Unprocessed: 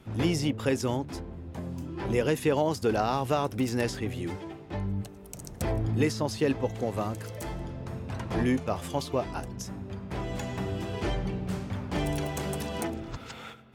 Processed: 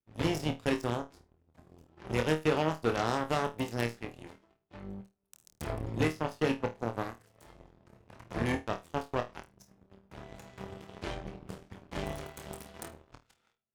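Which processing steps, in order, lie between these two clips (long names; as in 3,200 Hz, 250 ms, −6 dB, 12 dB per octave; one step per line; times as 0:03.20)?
harmonic generator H 6 −25 dB, 7 −17 dB, 8 −32 dB, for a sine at −12.5 dBFS
flutter between parallel walls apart 4.4 metres, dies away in 0.22 s
level −3.5 dB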